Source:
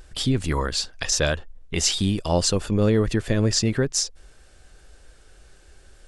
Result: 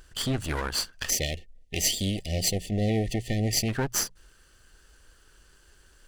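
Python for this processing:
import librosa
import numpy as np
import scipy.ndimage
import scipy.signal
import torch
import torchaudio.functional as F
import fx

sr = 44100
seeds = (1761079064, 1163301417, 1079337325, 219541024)

y = fx.lower_of_two(x, sr, delay_ms=0.66)
y = fx.low_shelf(y, sr, hz=460.0, db=-5.0)
y = fx.hum_notches(y, sr, base_hz=60, count=3)
y = fx.spec_erase(y, sr, start_s=1.1, length_s=2.59, low_hz=780.0, high_hz=1800.0)
y = y * librosa.db_to_amplitude(-1.5)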